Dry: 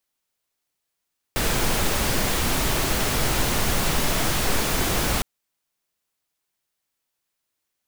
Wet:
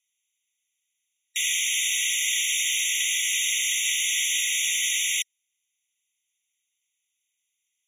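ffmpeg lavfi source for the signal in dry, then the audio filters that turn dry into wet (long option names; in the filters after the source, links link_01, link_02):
-f lavfi -i "anoisesrc=color=pink:amplitude=0.407:duration=3.86:sample_rate=44100:seed=1"
-af "lowpass=9600,highshelf=frequency=2200:gain=9,afftfilt=real='re*eq(mod(floor(b*sr/1024/1900),2),1)':imag='im*eq(mod(floor(b*sr/1024/1900),2),1)':win_size=1024:overlap=0.75"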